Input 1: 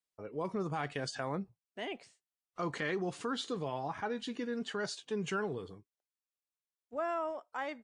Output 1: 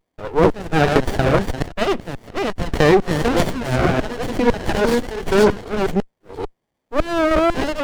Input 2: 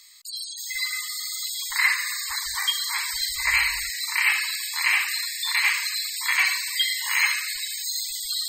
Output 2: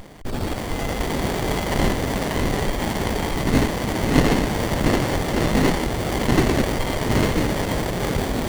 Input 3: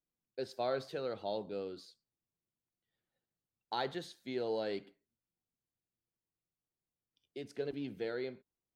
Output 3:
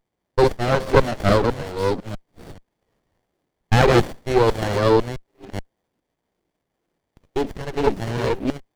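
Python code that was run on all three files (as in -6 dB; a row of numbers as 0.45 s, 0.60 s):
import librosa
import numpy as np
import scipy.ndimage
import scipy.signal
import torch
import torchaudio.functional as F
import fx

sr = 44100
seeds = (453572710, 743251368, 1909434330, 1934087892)

p1 = fx.reverse_delay(x, sr, ms=430, wet_db=-2)
p2 = fx.over_compress(p1, sr, threshold_db=-30.0, ratio=-0.5)
p3 = p1 + (p2 * librosa.db_to_amplitude(-3.0))
p4 = fx.filter_lfo_highpass(p3, sr, shape='saw_down', hz=2.0, low_hz=220.0, high_hz=2500.0, q=1.2)
p5 = fx.running_max(p4, sr, window=33)
y = p5 * 10.0 ** (-2 / 20.0) / np.max(np.abs(p5))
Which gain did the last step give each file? +17.5 dB, +5.5 dB, +17.5 dB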